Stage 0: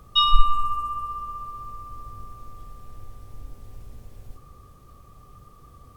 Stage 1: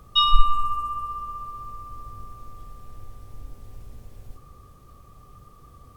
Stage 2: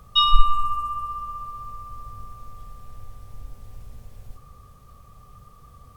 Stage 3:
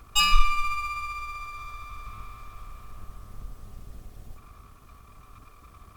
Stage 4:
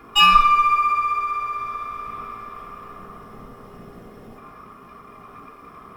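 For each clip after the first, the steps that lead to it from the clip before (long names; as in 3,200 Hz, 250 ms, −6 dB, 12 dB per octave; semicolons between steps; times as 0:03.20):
no processing that can be heard
parametric band 330 Hz −11 dB 0.51 octaves; level +1 dB
lower of the sound and its delayed copy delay 2.8 ms; in parallel at −8 dB: soft clipping −14.5 dBFS, distortion −8 dB; on the sum: level −3 dB
convolution reverb RT60 0.40 s, pre-delay 3 ms, DRR −5 dB; level −3.5 dB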